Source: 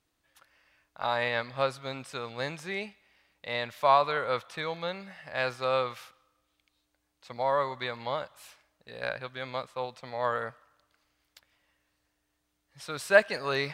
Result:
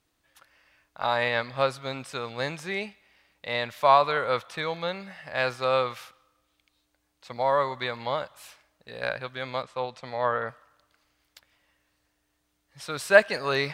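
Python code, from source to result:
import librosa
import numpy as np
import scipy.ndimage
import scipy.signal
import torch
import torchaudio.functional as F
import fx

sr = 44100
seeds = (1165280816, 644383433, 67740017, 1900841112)

y = fx.env_lowpass_down(x, sr, base_hz=2700.0, full_db=-25.0, at=(9.62, 10.47), fade=0.02)
y = F.gain(torch.from_numpy(y), 3.5).numpy()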